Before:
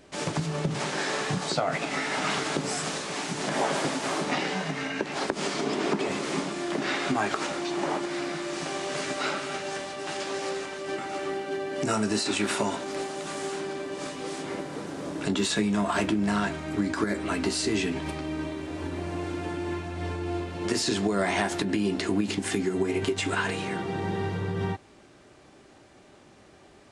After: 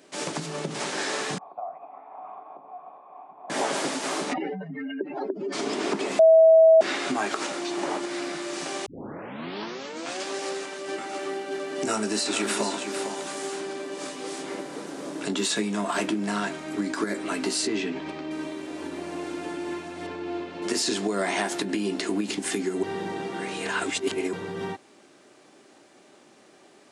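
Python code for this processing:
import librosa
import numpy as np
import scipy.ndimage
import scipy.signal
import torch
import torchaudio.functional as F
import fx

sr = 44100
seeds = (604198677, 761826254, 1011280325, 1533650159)

y = fx.formant_cascade(x, sr, vowel='a', at=(1.38, 3.5))
y = fx.spec_expand(y, sr, power=3.2, at=(4.32, 5.52), fade=0.02)
y = fx.echo_single(y, sr, ms=452, db=-8.0, at=(11.1, 13.32))
y = fx.air_absorb(y, sr, metres=130.0, at=(17.67, 18.31))
y = fx.lowpass(y, sr, hz=4400.0, slope=12, at=(20.06, 20.61), fade=0.02)
y = fx.edit(y, sr, fx.bleep(start_s=6.19, length_s=0.62, hz=647.0, db=-10.5),
    fx.tape_start(start_s=8.86, length_s=1.38),
    fx.reverse_span(start_s=22.83, length_s=1.5), tone=tone)
y = scipy.signal.sosfilt(scipy.signal.cheby1(2, 1.0, 260.0, 'highpass', fs=sr, output='sos'), y)
y = fx.high_shelf(y, sr, hz=5100.0, db=6.0)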